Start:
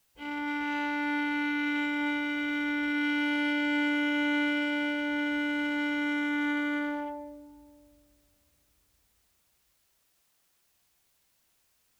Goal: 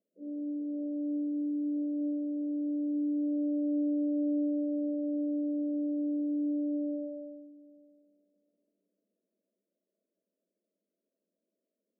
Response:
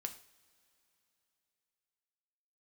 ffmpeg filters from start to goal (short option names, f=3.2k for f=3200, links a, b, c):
-af "afftfilt=real='re*between(b*sr/4096,180,670)':imag='im*between(b*sr/4096,180,670)':win_size=4096:overlap=0.75"